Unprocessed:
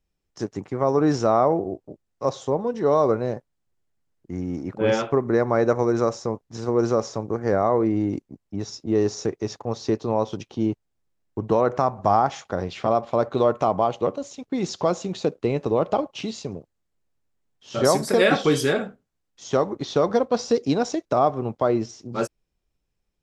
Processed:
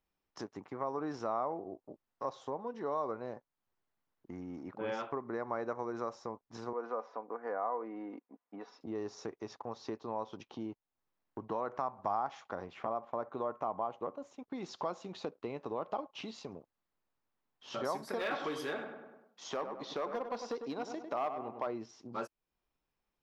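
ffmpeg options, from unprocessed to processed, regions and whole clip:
-filter_complex "[0:a]asettb=1/sr,asplit=3[a][b][c];[a]atrim=end=6.734[d];[b]atrim=start=6.73:end=8.81,asetpts=PTS-STARTPTS,afade=t=in:d=0.004:c=qsin,afade=t=out:st=2.076:d=0.004:c=qsin,highpass=420,lowpass=2.1k,aecho=1:1:4.1:0.47,atrim=end_sample=91728[e];[c]atrim=start=8.806[f];[d][e]acrossfade=d=0.004:c1=hsin:c2=qsin[g];[g][f]acrossfade=d=0.004:c1=qsin:c2=hsin,asettb=1/sr,asplit=3[h][i][j];[h]atrim=end=12.664[k];[i]atrim=start=12.66:end=14.48,asetpts=PTS-STARTPTS,afade=t=in:d=0.004:c=qsin,afade=t=out:st=1.816:d=0.004:c=qsin,agate=range=-33dB:threshold=-43dB:ratio=3:release=100:detection=peak,equalizer=f=4.3k:w=1:g=-11[l];[j]atrim=start=14.476[m];[k][l]acrossfade=d=0.004:c1=hsin:c2=qsin[n];[n][m]acrossfade=d=0.004:c1=qsin:c2=hsin,asettb=1/sr,asplit=3[o][p][q];[o]atrim=end=18.194[r];[p]atrim=start=18.19:end=21.67,asetpts=PTS-STARTPTS,afade=t=in:d=0.004:c=qsin,afade=t=out:st=3.476:d=0.004:c=qsin,highpass=f=210:p=1,volume=14.5dB,asoftclip=hard,volume=-14.5dB,asplit=2[s][t];[t]adelay=100,lowpass=f=2.2k:p=1,volume=-8dB,asplit=2[u][v];[v]adelay=100,lowpass=f=2.2k:p=1,volume=0.43,asplit=2[w][x];[x]adelay=100,lowpass=f=2.2k:p=1,volume=0.43,asplit=2[y][z];[z]adelay=100,lowpass=f=2.2k:p=1,volume=0.43,asplit=2[aa][ab];[ab]adelay=100,lowpass=f=2.2k:p=1,volume=0.43[ac];[s][u][w][y][aa][ac]amix=inputs=6:normalize=0,atrim=end_sample=153468[ad];[q]atrim=start=21.666[ae];[r][ad]acrossfade=d=0.004:c1=hsin:c2=qsin[af];[af][ae]acrossfade=d=0.004:c1=qsin:c2=hsin,equalizer=f=250:t=o:w=1:g=5,equalizer=f=1k:t=o:w=1:g=7,equalizer=f=8k:t=o:w=1:g=-11,acompressor=threshold=-38dB:ratio=2,lowshelf=f=400:g=-11,volume=-2.5dB"

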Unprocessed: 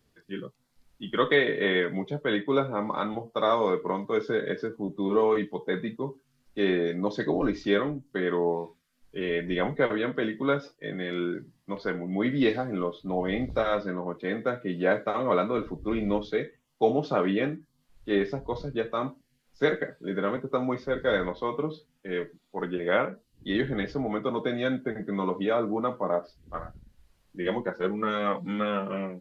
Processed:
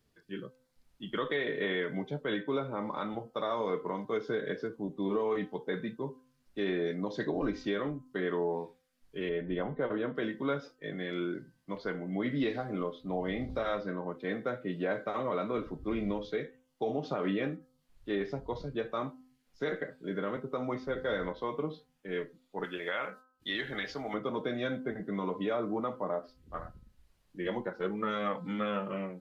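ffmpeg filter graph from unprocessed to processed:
-filter_complex "[0:a]asettb=1/sr,asplit=3[a][b][c];[a]atrim=end=9.294[d];[b]atrim=start=9.29:end=10.15,asetpts=PTS-STARTPTS,afade=t=in:d=0.004:c=qsin,afade=t=out:st=0.856:d=0.004:c=qsin,lowpass=f=3.1k:w=0.5412,lowpass=f=3.1k:w=1.3066,equalizer=f=2.2k:w=1.7:g=-9[e];[c]atrim=start=10.146[f];[d][e]acrossfade=d=0.004:c1=hsin:c2=qsin[g];[g][f]acrossfade=d=0.004:c1=qsin:c2=hsin,asettb=1/sr,asplit=3[h][i][j];[h]atrim=end=22.644[k];[i]atrim=start=22.64:end=24.14,asetpts=PTS-STARTPTS,afade=t=in:d=0.004:c=qsin,afade=t=out:st=1.496:d=0.004:c=qsin,tiltshelf=f=710:g=-9,agate=range=-33dB:threshold=-56dB:ratio=3:release=100:detection=peak[l];[j]atrim=start=24.136[m];[k][l]acrossfade=d=0.004:c1=hsin:c2=qsin[n];[n][m]acrossfade=d=0.004:c1=qsin:c2=hsin,bandreject=f=256.9:t=h:w=4,bandreject=f=513.8:t=h:w=4,bandreject=f=770.7:t=h:w=4,bandreject=f=1.0276k:t=h:w=4,bandreject=f=1.2845k:t=h:w=4,bandreject=f=1.5414k:t=h:w=4,alimiter=limit=-18dB:level=0:latency=1:release=97,volume=-4.5dB"

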